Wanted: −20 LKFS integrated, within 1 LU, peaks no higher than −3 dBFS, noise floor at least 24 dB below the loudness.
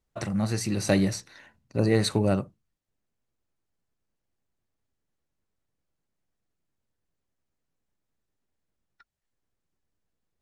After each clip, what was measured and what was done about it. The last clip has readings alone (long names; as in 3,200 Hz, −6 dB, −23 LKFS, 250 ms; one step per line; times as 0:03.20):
integrated loudness −26.0 LKFS; sample peak −7.5 dBFS; target loudness −20.0 LKFS
→ level +6 dB
brickwall limiter −3 dBFS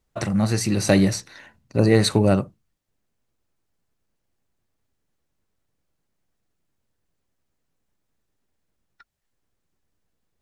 integrated loudness −20.5 LKFS; sample peak −3.0 dBFS; background noise floor −76 dBFS